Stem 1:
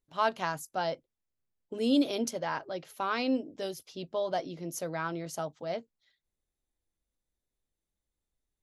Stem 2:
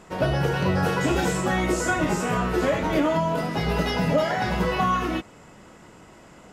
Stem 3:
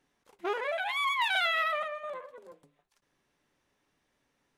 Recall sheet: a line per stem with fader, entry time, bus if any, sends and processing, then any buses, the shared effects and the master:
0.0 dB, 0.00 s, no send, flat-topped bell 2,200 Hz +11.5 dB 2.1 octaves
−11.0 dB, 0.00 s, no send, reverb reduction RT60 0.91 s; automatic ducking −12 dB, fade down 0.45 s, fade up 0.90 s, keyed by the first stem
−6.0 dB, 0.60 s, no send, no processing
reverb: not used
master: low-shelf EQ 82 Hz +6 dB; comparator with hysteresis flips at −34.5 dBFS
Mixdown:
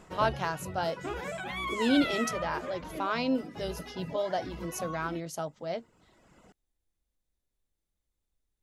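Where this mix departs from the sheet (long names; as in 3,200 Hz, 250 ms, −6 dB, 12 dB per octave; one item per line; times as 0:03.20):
stem 1: missing flat-topped bell 2,200 Hz +11.5 dB 2.1 octaves
stem 2 −11.0 dB → −5.0 dB
master: missing comparator with hysteresis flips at −34.5 dBFS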